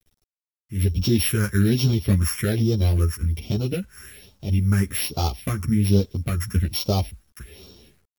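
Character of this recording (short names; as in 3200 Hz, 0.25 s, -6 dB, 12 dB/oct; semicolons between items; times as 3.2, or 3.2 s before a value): a buzz of ramps at a fixed pitch in blocks of 8 samples; phasing stages 4, 1.2 Hz, lowest notch 640–1800 Hz; a quantiser's noise floor 10-bit, dither none; a shimmering, thickened sound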